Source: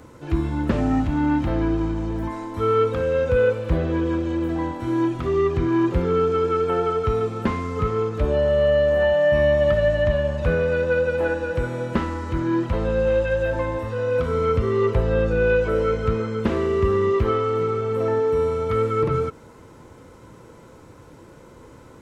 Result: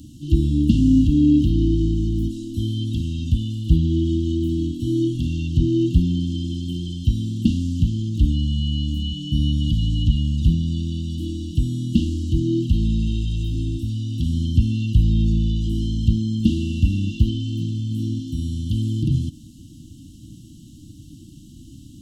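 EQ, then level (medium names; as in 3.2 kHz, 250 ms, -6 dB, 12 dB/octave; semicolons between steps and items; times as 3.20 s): brick-wall FIR band-stop 330–2700 Hz; +6.5 dB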